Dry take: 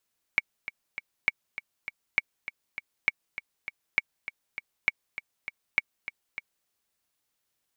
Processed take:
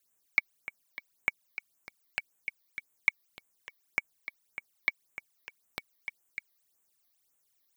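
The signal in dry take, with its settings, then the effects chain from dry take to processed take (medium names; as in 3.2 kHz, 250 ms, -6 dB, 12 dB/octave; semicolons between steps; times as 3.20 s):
metronome 200 bpm, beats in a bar 3, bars 7, 2.25 kHz, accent 13 dB -8.5 dBFS
bass shelf 120 Hz -5 dB; phase shifter stages 12, 1.8 Hz, lowest notch 140–4900 Hz; treble shelf 5.7 kHz +10.5 dB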